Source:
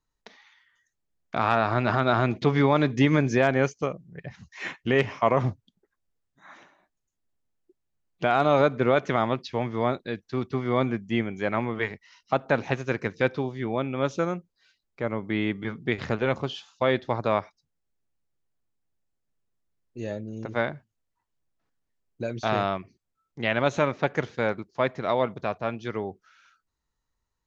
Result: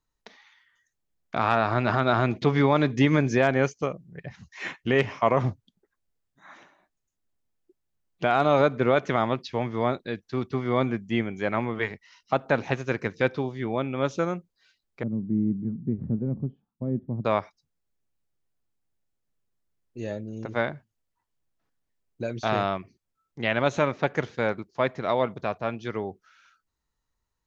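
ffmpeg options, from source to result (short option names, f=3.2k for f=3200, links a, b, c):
-filter_complex "[0:a]asettb=1/sr,asplit=3[a][b][c];[a]atrim=end=15.034[d];[b]atrim=start=15.03:end=17.25,asetpts=PTS-STARTPTS,afade=t=in:d=0.004:c=qsin,afade=t=out:st=2.216:d=0.004:c=qsin,lowpass=f=210:t=q:w=2.1[e];[c]atrim=start=17.246[f];[d][e]acrossfade=d=0.004:c1=hsin:c2=qsin[g];[g][f]acrossfade=d=0.004:c1=qsin:c2=hsin"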